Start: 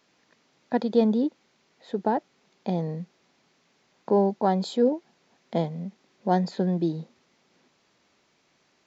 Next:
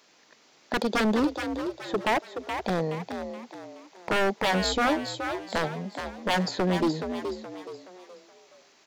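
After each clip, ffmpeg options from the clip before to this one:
ffmpeg -i in.wav -filter_complex "[0:a]bass=frequency=250:gain=-10,treble=frequency=4000:gain=4,aeval=exprs='0.0596*(abs(mod(val(0)/0.0596+3,4)-2)-1)':channel_layout=same,asplit=2[link_01][link_02];[link_02]asplit=4[link_03][link_04][link_05][link_06];[link_03]adelay=423,afreqshift=60,volume=-7.5dB[link_07];[link_04]adelay=846,afreqshift=120,volume=-15.7dB[link_08];[link_05]adelay=1269,afreqshift=180,volume=-23.9dB[link_09];[link_06]adelay=1692,afreqshift=240,volume=-32dB[link_10];[link_07][link_08][link_09][link_10]amix=inputs=4:normalize=0[link_11];[link_01][link_11]amix=inputs=2:normalize=0,volume=6dB" out.wav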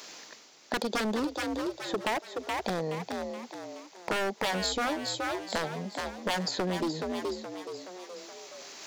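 ffmpeg -i in.wav -af "areverse,acompressor=mode=upward:threshold=-37dB:ratio=2.5,areverse,bass=frequency=250:gain=-3,treble=frequency=4000:gain=6,acompressor=threshold=-27dB:ratio=6" out.wav

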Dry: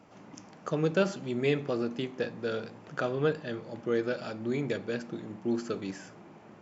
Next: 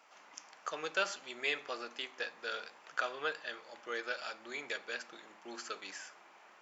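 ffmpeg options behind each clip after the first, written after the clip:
ffmpeg -i in.wav -af "highpass=1100,volume=2dB" out.wav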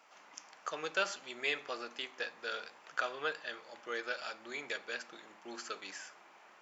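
ffmpeg -i in.wav -af "lowshelf=frequency=110:gain=6" out.wav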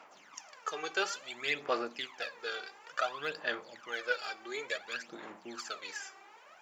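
ffmpeg -i in.wav -af "aphaser=in_gain=1:out_gain=1:delay=2.6:decay=0.7:speed=0.57:type=sinusoidal" out.wav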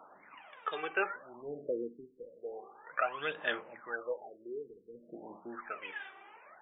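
ffmpeg -i in.wav -af "afftfilt=real='re*lt(b*sr/1024,470*pow(3800/470,0.5+0.5*sin(2*PI*0.37*pts/sr)))':imag='im*lt(b*sr/1024,470*pow(3800/470,0.5+0.5*sin(2*PI*0.37*pts/sr)))':win_size=1024:overlap=0.75,volume=1dB" out.wav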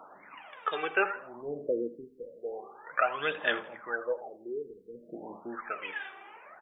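ffmpeg -i in.wav -af "aecho=1:1:82|164|246:0.141|0.0509|0.0183,volume=5dB" out.wav

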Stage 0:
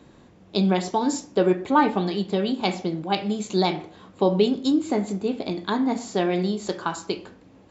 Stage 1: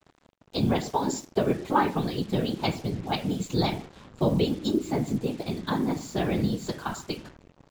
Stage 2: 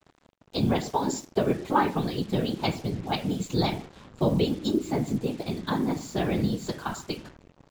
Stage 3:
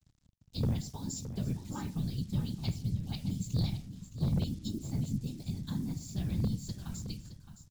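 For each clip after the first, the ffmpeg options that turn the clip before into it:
ffmpeg -i in.wav -af "asubboost=boost=4:cutoff=160,afftfilt=real='hypot(re,im)*cos(2*PI*random(0))':imag='hypot(re,im)*sin(2*PI*random(1))':win_size=512:overlap=0.75,acrusher=bits=7:mix=0:aa=0.5,volume=2.5dB" out.wav
ffmpeg -i in.wav -af anull out.wav
ffmpeg -i in.wav -af "firequalizer=gain_entry='entry(100,0);entry(390,-26);entry(1000,-26);entry(5200,-7)':delay=0.05:min_phase=1,aeval=exprs='0.0562*(abs(mod(val(0)/0.0562+3,4)-2)-1)':channel_layout=same,aecho=1:1:617:0.266,volume=2dB" out.wav

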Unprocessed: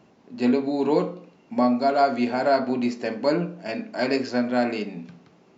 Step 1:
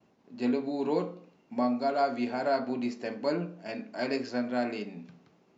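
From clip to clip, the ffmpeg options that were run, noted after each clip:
ffmpeg -i in.wav -af "agate=range=-33dB:threshold=-54dB:ratio=3:detection=peak,volume=-7.5dB" out.wav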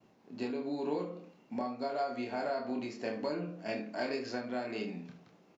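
ffmpeg -i in.wav -filter_complex "[0:a]acompressor=threshold=-33dB:ratio=6,asplit=2[link_01][link_02];[link_02]aecho=0:1:27|75:0.668|0.237[link_03];[link_01][link_03]amix=inputs=2:normalize=0" out.wav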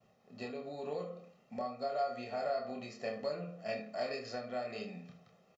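ffmpeg -i in.wav -af "aecho=1:1:1.6:0.82,volume=-4.5dB" out.wav

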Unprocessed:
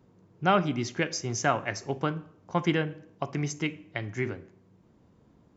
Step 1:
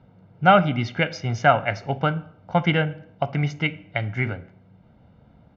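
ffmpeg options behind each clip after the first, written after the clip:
ffmpeg -i in.wav -af "lowpass=frequency=3800:width=0.5412,lowpass=frequency=3800:width=1.3066,aecho=1:1:1.4:0.64,volume=6dB" out.wav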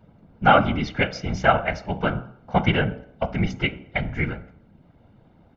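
ffmpeg -i in.wav -af "afftfilt=real='hypot(re,im)*cos(2*PI*random(0))':imag='hypot(re,im)*sin(2*PI*random(1))':win_size=512:overlap=0.75,bandreject=frequency=62.72:width_type=h:width=4,bandreject=frequency=125.44:width_type=h:width=4,bandreject=frequency=188.16:width_type=h:width=4,bandreject=frequency=250.88:width_type=h:width=4,bandreject=frequency=313.6:width_type=h:width=4,bandreject=frequency=376.32:width_type=h:width=4,bandreject=frequency=439.04:width_type=h:width=4,bandreject=frequency=501.76:width_type=h:width=4,bandreject=frequency=564.48:width_type=h:width=4,bandreject=frequency=627.2:width_type=h:width=4,bandreject=frequency=689.92:width_type=h:width=4,bandreject=frequency=752.64:width_type=h:width=4,bandreject=frequency=815.36:width_type=h:width=4,bandreject=frequency=878.08:width_type=h:width=4,bandreject=frequency=940.8:width_type=h:width=4,bandreject=frequency=1003.52:width_type=h:width=4,bandreject=frequency=1066.24:width_type=h:width=4,bandreject=frequency=1128.96:width_type=h:width=4,bandreject=frequency=1191.68:width_type=h:width=4,bandreject=frequency=1254.4:width_type=h:width=4,bandreject=frequency=1317.12:width_type=h:width=4,bandreject=frequency=1379.84:width_type=h:width=4,bandreject=frequency=1442.56:width_type=h:width=4,bandreject=frequency=1505.28:width_type=h:width=4,volume=6dB" out.wav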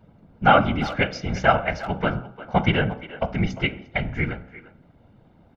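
ffmpeg -i in.wav -filter_complex "[0:a]asplit=2[link_01][link_02];[link_02]adelay=350,highpass=300,lowpass=3400,asoftclip=type=hard:threshold=-10.5dB,volume=-15dB[link_03];[link_01][link_03]amix=inputs=2:normalize=0" out.wav

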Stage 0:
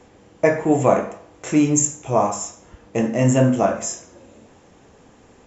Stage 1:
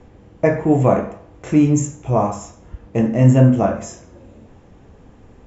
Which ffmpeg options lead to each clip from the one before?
ffmpeg -i in.wav -af "aemphasis=mode=reproduction:type=bsi,volume=-1dB" out.wav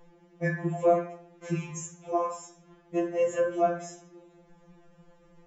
ffmpeg -i in.wav -af "afftfilt=real='re*2.83*eq(mod(b,8),0)':imag='im*2.83*eq(mod(b,8),0)':win_size=2048:overlap=0.75,volume=-7dB" out.wav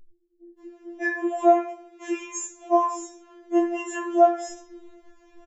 ffmpeg -i in.wav -filter_complex "[0:a]acrossover=split=210[link_01][link_02];[link_02]adelay=590[link_03];[link_01][link_03]amix=inputs=2:normalize=0,afftfilt=real='re*4*eq(mod(b,16),0)':imag='im*4*eq(mod(b,16),0)':win_size=2048:overlap=0.75" out.wav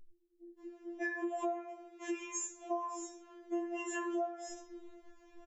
ffmpeg -i in.wav -af "acompressor=threshold=-28dB:ratio=10,volume=-5.5dB" out.wav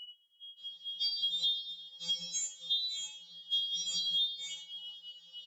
ffmpeg -i in.wav -filter_complex "[0:a]afftfilt=real='real(if(lt(b,272),68*(eq(floor(b/68),0)*2+eq(floor(b/68),1)*3+eq(floor(b/68),2)*0+eq(floor(b/68),3)*1)+mod(b,68),b),0)':imag='imag(if(lt(b,272),68*(eq(floor(b/68),0)*2+eq(floor(b/68),1)*3+eq(floor(b/68),2)*0+eq(floor(b/68),3)*1)+mod(b,68),b),0)':win_size=2048:overlap=0.75,asplit=2[link_01][link_02];[link_02]acrusher=bits=5:mode=log:mix=0:aa=0.000001,volume=-11dB[link_03];[link_01][link_03]amix=inputs=2:normalize=0,volume=1.5dB" out.wav

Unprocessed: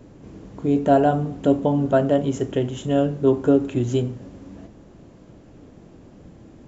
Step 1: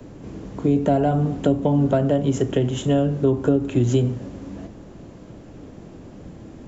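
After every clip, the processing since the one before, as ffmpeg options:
ffmpeg -i in.wav -filter_complex "[0:a]acrossover=split=150|860|2000[link_01][link_02][link_03][link_04];[link_03]asoftclip=type=tanh:threshold=-26dB[link_05];[link_01][link_02][link_05][link_04]amix=inputs=4:normalize=0,acrossover=split=170[link_06][link_07];[link_07]acompressor=threshold=-23dB:ratio=5[link_08];[link_06][link_08]amix=inputs=2:normalize=0,volume=5.5dB" out.wav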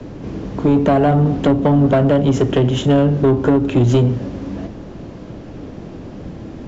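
ffmpeg -i in.wav -filter_complex "[0:a]lowpass=frequency=5800:width=0.5412,lowpass=frequency=5800:width=1.3066,aeval=exprs='0.501*(cos(1*acos(clip(val(0)/0.501,-1,1)))-cos(1*PI/2))+0.0562*(cos(5*acos(clip(val(0)/0.501,-1,1)))-cos(5*PI/2))':channel_layout=same,asplit=2[link_01][link_02];[link_02]asoftclip=type=hard:threshold=-18.5dB,volume=-9dB[link_03];[link_01][link_03]amix=inputs=2:normalize=0,volume=2dB" out.wav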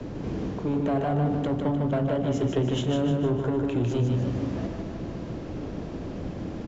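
ffmpeg -i in.wav -af "areverse,acompressor=threshold=-21dB:ratio=6,areverse,aecho=1:1:152|304|456|608|760|912:0.596|0.298|0.149|0.0745|0.0372|0.0186,volume=-3.5dB" out.wav

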